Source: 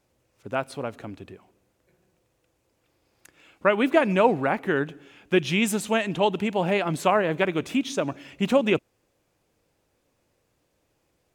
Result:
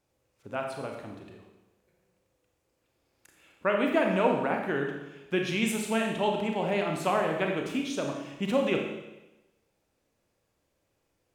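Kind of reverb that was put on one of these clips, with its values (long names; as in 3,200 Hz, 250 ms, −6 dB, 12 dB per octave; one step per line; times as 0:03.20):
four-comb reverb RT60 1 s, combs from 28 ms, DRR 1.5 dB
level −7 dB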